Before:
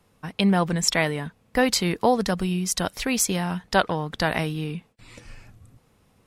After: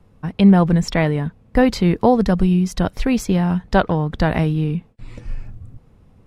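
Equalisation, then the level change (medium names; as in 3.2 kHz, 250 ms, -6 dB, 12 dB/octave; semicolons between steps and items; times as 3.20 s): dynamic bell 8.6 kHz, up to -6 dB, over -38 dBFS, Q 1.1; tilt EQ -3 dB/octave; +2.5 dB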